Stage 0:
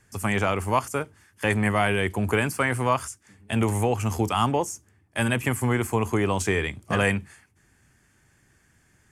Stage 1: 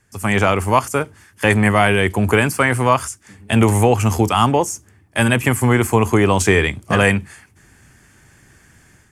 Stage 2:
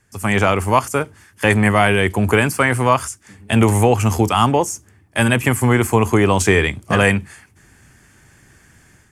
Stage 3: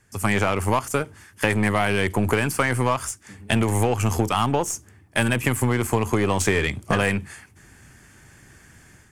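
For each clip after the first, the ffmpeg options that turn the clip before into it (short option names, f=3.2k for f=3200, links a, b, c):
-af "dynaudnorm=f=100:g=5:m=12dB"
-af anull
-af "aeval=exprs='0.841*(cos(1*acos(clip(val(0)/0.841,-1,1)))-cos(1*PI/2))+0.0422*(cos(8*acos(clip(val(0)/0.841,-1,1)))-cos(8*PI/2))':c=same,acompressor=threshold=-17dB:ratio=6"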